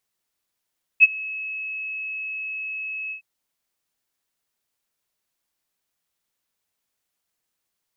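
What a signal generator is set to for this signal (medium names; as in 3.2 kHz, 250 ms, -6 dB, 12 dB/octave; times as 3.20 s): ADSR sine 2.58 kHz, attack 34 ms, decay 29 ms, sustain -22.5 dB, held 2.11 s, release 103 ms -5.5 dBFS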